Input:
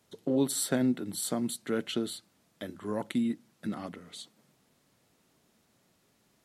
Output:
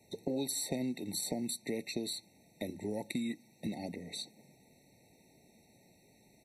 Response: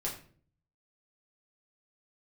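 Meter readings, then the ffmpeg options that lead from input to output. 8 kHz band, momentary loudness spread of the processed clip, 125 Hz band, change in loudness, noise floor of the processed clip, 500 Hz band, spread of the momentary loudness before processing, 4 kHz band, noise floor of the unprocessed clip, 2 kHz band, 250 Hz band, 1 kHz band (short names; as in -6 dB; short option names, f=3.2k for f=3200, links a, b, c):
-3.5 dB, 8 LU, -5.5 dB, -6.0 dB, -66 dBFS, -6.0 dB, 17 LU, -1.5 dB, -70 dBFS, -5.0 dB, -7.0 dB, -7.5 dB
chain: -filter_complex "[0:a]aresample=32000,aresample=44100,acrossover=split=670|2500[a][b][c];[a]acompressor=threshold=-43dB:ratio=4[d];[b]acompressor=threshold=-53dB:ratio=4[e];[c]acompressor=threshold=-41dB:ratio=4[f];[d][e][f]amix=inputs=3:normalize=0,afftfilt=real='re*eq(mod(floor(b*sr/1024/910),2),0)':imag='im*eq(mod(floor(b*sr/1024/910),2),0)':win_size=1024:overlap=0.75,volume=6dB"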